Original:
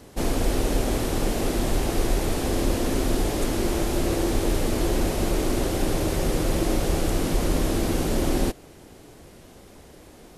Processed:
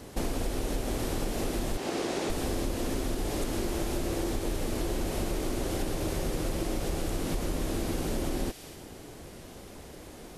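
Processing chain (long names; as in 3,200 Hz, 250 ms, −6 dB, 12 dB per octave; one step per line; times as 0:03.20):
0:01.77–0:02.30: band-pass filter 220–7,200 Hz
delay with a high-pass on its return 63 ms, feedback 67%, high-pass 2,200 Hz, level −10 dB
downward compressor 6 to 1, threshold −29 dBFS, peak gain reduction 11.5 dB
level +1.5 dB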